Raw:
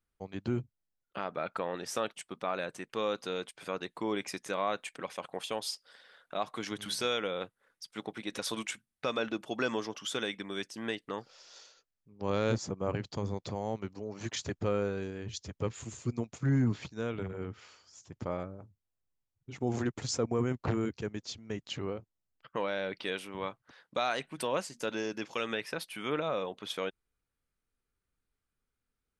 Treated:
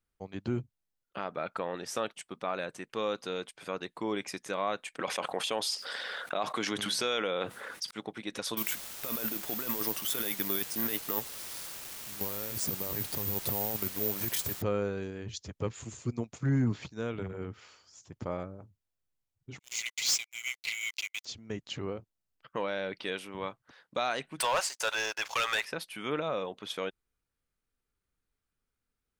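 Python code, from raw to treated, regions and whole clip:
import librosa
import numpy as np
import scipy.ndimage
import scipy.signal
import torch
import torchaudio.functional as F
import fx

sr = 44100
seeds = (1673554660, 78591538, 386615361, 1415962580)

y = fx.chain(x, sr, fx.highpass(hz=240.0, slope=6),
    fx.high_shelf(hz=8600.0, db=-4.0),
    fx.env_flatten(amount_pct=70), at=(4.99, 7.91))
y = fx.chain(y, sr, fx.over_compress(threshold_db=-38.0, ratio=-1.0),
    fx.quant_dither(seeds[0], bits=8, dither='triangular'),
    fx.resample_bad(factor=3, down='none', up='zero_stuff'), at=(8.57, 14.62))
y = fx.chain(y, sr, fx.cheby1_highpass(hz=2000.0, order=10),
    fx.leveller(passes=5), at=(19.59, 21.25))
y = fx.chain(y, sr, fx.highpass(hz=670.0, slope=24),
    fx.leveller(passes=3), at=(24.4, 25.65))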